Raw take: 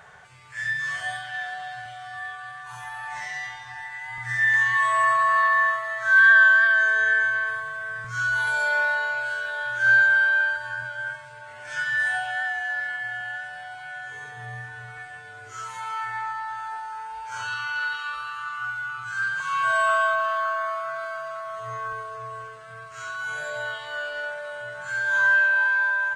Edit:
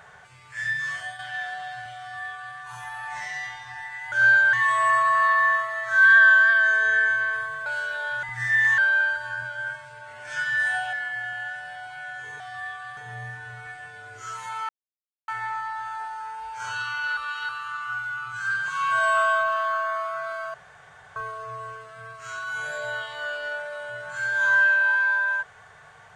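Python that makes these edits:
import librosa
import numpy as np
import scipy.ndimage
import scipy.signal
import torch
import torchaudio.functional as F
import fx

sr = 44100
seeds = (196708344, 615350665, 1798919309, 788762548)

y = fx.edit(x, sr, fx.fade_out_to(start_s=0.71, length_s=0.48, curve='qsin', floor_db=-9.5),
    fx.duplicate(start_s=1.99, length_s=0.57, to_s=14.28),
    fx.swap(start_s=4.12, length_s=0.55, other_s=9.77, other_length_s=0.41),
    fx.cut(start_s=7.8, length_s=1.4),
    fx.cut(start_s=12.33, length_s=0.48),
    fx.insert_silence(at_s=16.0, length_s=0.59),
    fx.reverse_span(start_s=17.89, length_s=0.32),
    fx.room_tone_fill(start_s=21.26, length_s=0.62), tone=tone)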